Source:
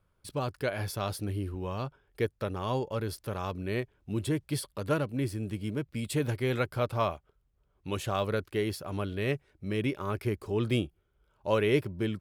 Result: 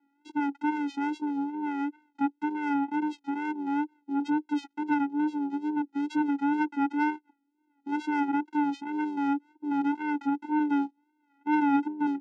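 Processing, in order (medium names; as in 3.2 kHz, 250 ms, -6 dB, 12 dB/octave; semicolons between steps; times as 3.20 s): vocoder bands 4, square 291 Hz; wow and flutter 71 cents; overdrive pedal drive 19 dB, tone 1.8 kHz, clips at -16 dBFS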